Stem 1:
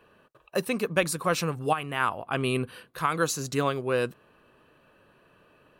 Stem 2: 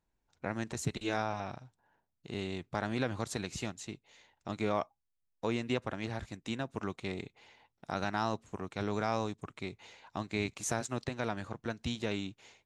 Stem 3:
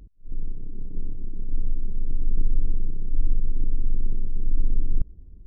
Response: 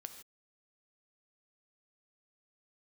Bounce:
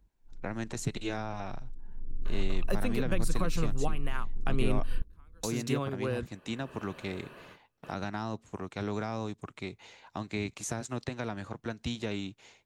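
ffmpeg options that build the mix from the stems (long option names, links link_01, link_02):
-filter_complex "[0:a]acompressor=mode=upward:threshold=-35dB:ratio=2.5,adelay=2150,volume=-2.5dB[link_01];[1:a]volume=1.5dB,asplit=2[link_02][link_03];[2:a]volume=-9.5dB,afade=type=in:start_time=1.85:duration=0.41:silence=0.334965[link_04];[link_03]apad=whole_len=350379[link_05];[link_01][link_05]sidechaingate=range=-38dB:threshold=-57dB:ratio=16:detection=peak[link_06];[link_06][link_02][link_04]amix=inputs=3:normalize=0,acrossover=split=330[link_07][link_08];[link_08]acompressor=threshold=-34dB:ratio=6[link_09];[link_07][link_09]amix=inputs=2:normalize=0"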